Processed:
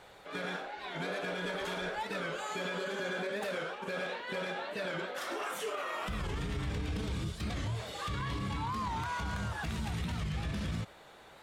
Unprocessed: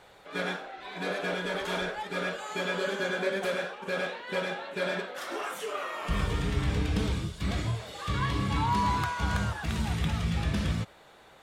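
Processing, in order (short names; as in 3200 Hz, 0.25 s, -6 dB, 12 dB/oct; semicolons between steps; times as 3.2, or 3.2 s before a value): limiter -28 dBFS, peak gain reduction 11.5 dB; record warp 45 rpm, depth 160 cents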